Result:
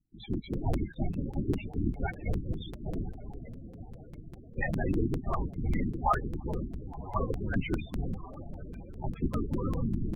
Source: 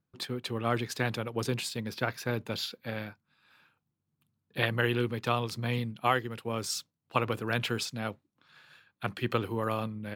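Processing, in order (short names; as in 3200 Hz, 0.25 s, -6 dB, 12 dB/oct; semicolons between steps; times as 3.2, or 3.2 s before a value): diffused feedback echo 1.108 s, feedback 43%, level -10.5 dB; hard clip -18.5 dBFS, distortion -18 dB; de-hum 223.6 Hz, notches 10; small resonant body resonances 210/820/2100 Hz, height 13 dB, ringing for 40 ms; LPC vocoder at 8 kHz whisper; loudest bins only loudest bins 16; dynamic EQ 1600 Hz, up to +5 dB, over -40 dBFS, Q 0.77; crackling interface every 0.20 s, samples 256, repeat, from 0.33; gain -3 dB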